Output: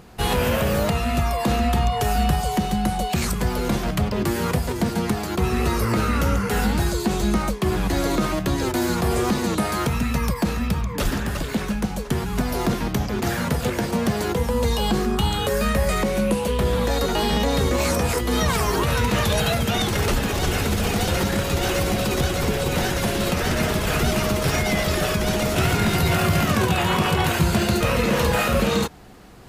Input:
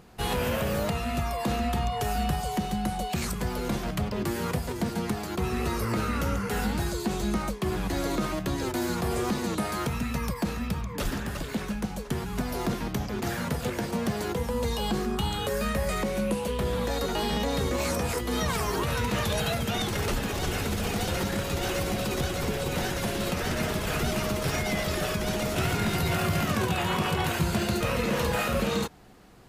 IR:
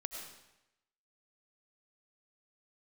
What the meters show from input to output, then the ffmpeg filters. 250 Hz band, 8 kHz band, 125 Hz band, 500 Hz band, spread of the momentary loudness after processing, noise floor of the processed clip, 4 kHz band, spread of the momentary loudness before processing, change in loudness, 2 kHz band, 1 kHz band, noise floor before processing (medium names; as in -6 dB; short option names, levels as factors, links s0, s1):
+6.5 dB, +6.5 dB, +7.5 dB, +6.5 dB, 4 LU, -28 dBFS, +6.5 dB, 4 LU, +7.0 dB, +6.5 dB, +6.5 dB, -35 dBFS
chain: -af "equalizer=f=61:w=1.5:g=2.5,areverse,acompressor=mode=upward:threshold=0.00398:ratio=2.5,areverse,volume=2.11"